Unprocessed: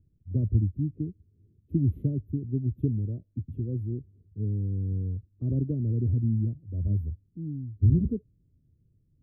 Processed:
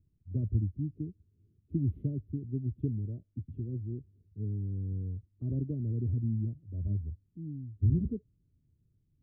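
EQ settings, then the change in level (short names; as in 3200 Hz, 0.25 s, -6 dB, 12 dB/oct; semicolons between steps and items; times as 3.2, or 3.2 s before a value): air absorption 55 m; notch 500 Hz, Q 15; -5.5 dB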